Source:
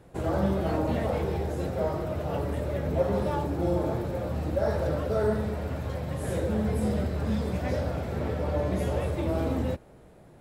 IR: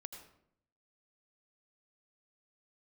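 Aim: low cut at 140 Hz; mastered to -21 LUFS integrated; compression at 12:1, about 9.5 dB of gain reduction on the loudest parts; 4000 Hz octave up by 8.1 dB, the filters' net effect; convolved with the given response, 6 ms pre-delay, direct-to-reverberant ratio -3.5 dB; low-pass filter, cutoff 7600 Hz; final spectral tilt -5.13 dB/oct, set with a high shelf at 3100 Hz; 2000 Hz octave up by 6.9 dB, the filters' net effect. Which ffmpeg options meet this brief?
-filter_complex "[0:a]highpass=140,lowpass=7.6k,equalizer=f=2k:t=o:g=6,highshelf=f=3.1k:g=6,equalizer=f=4k:t=o:g=4,acompressor=threshold=-29dB:ratio=12,asplit=2[a][b];[1:a]atrim=start_sample=2205,adelay=6[c];[b][c]afir=irnorm=-1:irlink=0,volume=8dB[d];[a][d]amix=inputs=2:normalize=0,volume=7.5dB"

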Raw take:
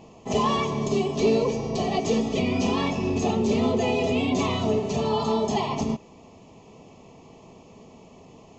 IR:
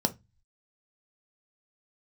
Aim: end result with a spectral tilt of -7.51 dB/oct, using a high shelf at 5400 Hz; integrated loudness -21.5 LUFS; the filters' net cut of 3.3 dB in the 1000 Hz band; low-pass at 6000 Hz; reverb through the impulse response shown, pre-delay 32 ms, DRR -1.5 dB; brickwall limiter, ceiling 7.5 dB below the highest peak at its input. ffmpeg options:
-filter_complex "[0:a]lowpass=6k,equalizer=f=1k:t=o:g=-4,highshelf=f=5.4k:g=-5.5,alimiter=limit=-21dB:level=0:latency=1,asplit=2[a][b];[1:a]atrim=start_sample=2205,adelay=32[c];[b][c]afir=irnorm=-1:irlink=0,volume=-6.5dB[d];[a][d]amix=inputs=2:normalize=0,volume=-2dB"

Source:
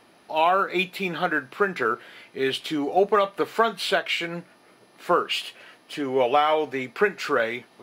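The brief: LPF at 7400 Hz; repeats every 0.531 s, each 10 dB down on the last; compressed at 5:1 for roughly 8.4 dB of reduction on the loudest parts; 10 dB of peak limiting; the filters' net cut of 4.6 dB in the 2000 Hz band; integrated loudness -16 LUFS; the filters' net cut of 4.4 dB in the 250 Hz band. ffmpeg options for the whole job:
-af "lowpass=7.4k,equalizer=f=250:t=o:g=-6.5,equalizer=f=2k:t=o:g=-6.5,acompressor=threshold=-26dB:ratio=5,alimiter=limit=-24dB:level=0:latency=1,aecho=1:1:531|1062|1593|2124:0.316|0.101|0.0324|0.0104,volume=18.5dB"

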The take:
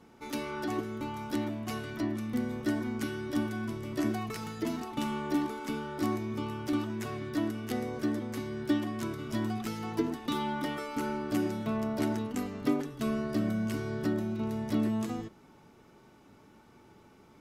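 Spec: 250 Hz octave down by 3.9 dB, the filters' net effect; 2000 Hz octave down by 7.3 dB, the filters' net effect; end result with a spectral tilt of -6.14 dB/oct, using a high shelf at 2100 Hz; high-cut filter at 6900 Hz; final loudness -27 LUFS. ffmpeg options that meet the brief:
-af "lowpass=6.9k,equalizer=f=250:t=o:g=-4.5,equalizer=f=2k:t=o:g=-7.5,highshelf=f=2.1k:g=-5.5,volume=10dB"

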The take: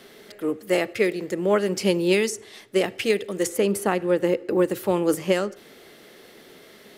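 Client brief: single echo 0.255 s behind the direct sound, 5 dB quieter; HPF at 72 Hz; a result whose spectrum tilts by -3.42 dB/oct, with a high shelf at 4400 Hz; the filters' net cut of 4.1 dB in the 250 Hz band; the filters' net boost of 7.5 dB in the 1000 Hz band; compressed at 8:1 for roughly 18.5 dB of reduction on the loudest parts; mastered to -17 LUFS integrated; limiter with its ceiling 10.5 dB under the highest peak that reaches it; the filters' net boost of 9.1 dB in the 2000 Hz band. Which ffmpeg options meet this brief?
-af "highpass=72,equalizer=f=250:t=o:g=-8.5,equalizer=f=1k:t=o:g=8,equalizer=f=2k:t=o:g=8,highshelf=f=4.4k:g=4.5,acompressor=threshold=-33dB:ratio=8,alimiter=level_in=5.5dB:limit=-24dB:level=0:latency=1,volume=-5.5dB,aecho=1:1:255:0.562,volume=22dB"

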